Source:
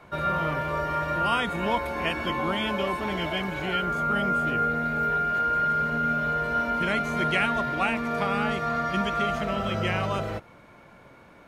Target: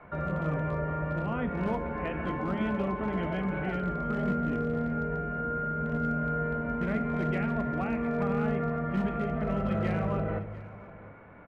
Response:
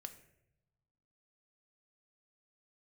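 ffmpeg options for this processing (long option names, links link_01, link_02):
-filter_complex "[0:a]lowpass=frequency=2200:width=0.5412,lowpass=frequency=2200:width=1.3066,acrossover=split=520[link_01][link_02];[link_02]acompressor=threshold=-36dB:ratio=6[link_03];[link_01][link_03]amix=inputs=2:normalize=0,asoftclip=type=hard:threshold=-23.5dB,aecho=1:1:698:0.119[link_04];[1:a]atrim=start_sample=2205[link_05];[link_04][link_05]afir=irnorm=-1:irlink=0,volume=5.5dB"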